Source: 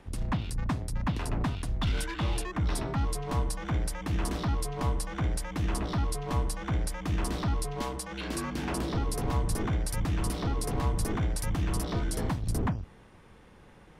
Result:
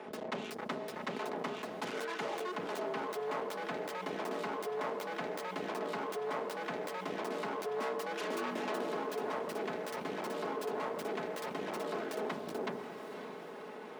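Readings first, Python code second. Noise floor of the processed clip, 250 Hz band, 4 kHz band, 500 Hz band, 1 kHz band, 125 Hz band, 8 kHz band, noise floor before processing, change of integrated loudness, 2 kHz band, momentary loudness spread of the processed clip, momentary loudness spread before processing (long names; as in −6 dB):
−46 dBFS, −8.5 dB, −5.5 dB, +2.5 dB, −1.0 dB, −24.0 dB, −14.0 dB, −54 dBFS, −6.5 dB, −1.0 dB, 4 LU, 3 LU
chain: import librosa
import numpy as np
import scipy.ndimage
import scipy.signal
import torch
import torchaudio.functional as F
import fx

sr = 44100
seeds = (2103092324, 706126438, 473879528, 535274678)

p1 = fx.self_delay(x, sr, depth_ms=0.52)
p2 = fx.lowpass(p1, sr, hz=2300.0, slope=6)
p3 = fx.low_shelf(p2, sr, hz=500.0, db=7.0)
p4 = fx.hum_notches(p3, sr, base_hz=50, count=9)
p5 = p4 + 0.6 * np.pad(p4, (int(4.7 * sr / 1000.0), 0))[:len(p4)]
p6 = fx.rider(p5, sr, range_db=3, speed_s=0.5)
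p7 = np.clip(p6, -10.0 ** (-18.5 / 20.0), 10.0 ** (-18.5 / 20.0))
p8 = fx.ladder_highpass(p7, sr, hz=320.0, resonance_pct=20)
p9 = p8 + fx.echo_diffused(p8, sr, ms=539, feedback_pct=48, wet_db=-15, dry=0)
y = fx.env_flatten(p9, sr, amount_pct=50)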